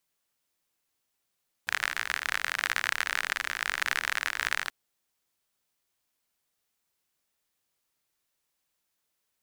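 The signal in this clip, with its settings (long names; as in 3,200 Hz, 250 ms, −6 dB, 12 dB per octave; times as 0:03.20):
rain-like ticks over hiss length 3.03 s, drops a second 50, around 1,700 Hz, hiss −23 dB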